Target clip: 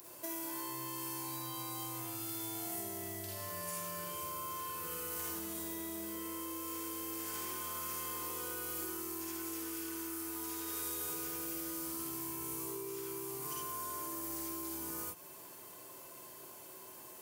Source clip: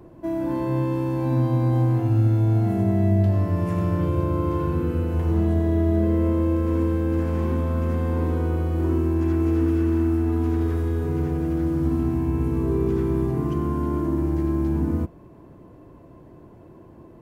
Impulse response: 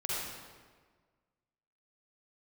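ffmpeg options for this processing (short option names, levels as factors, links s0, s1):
-filter_complex "[0:a]aderivative[s0];[1:a]atrim=start_sample=2205,atrim=end_sample=3969[s1];[s0][s1]afir=irnorm=-1:irlink=0,acompressor=threshold=0.00158:ratio=6,bass=f=250:g=-3,treble=f=4000:g=10,volume=5.01"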